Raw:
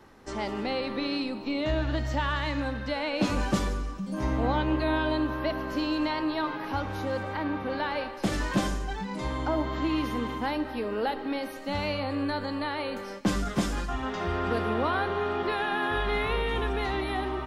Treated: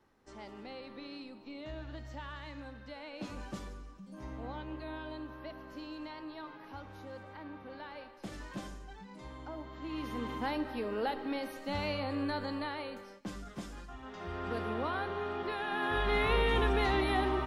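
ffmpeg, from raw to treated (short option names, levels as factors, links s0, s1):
-af "volume=3.55,afade=t=in:st=9.79:d=0.61:silence=0.281838,afade=t=out:st=12.51:d=0.69:silence=0.281838,afade=t=in:st=14.02:d=0.58:silence=0.398107,afade=t=in:st=15.62:d=0.8:silence=0.398107"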